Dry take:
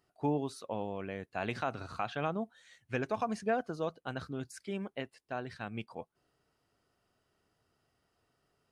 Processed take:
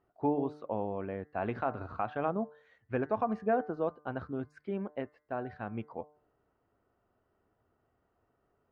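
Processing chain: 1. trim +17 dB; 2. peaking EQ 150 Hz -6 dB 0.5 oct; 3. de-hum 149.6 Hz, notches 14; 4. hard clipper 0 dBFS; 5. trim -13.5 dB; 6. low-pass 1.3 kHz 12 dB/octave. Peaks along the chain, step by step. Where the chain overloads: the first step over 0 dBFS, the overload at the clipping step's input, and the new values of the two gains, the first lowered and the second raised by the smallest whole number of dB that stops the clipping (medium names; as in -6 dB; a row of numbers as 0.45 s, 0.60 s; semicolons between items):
-3.0 dBFS, -3.0 dBFS, -3.0 dBFS, -3.0 dBFS, -16.5 dBFS, -17.5 dBFS; nothing clips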